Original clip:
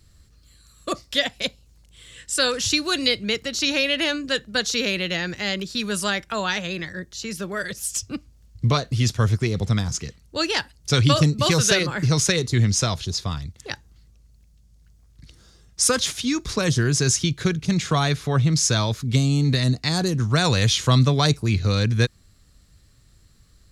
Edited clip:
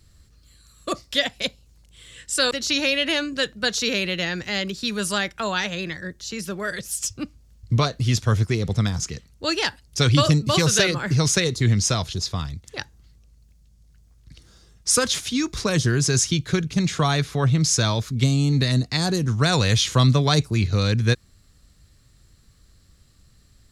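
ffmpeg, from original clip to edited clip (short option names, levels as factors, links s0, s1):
-filter_complex "[0:a]asplit=2[s0][s1];[s0]atrim=end=2.512[s2];[s1]atrim=start=3.428[s3];[s2][s3]acrossfade=d=0.004:c1=hsin:c2=hsin"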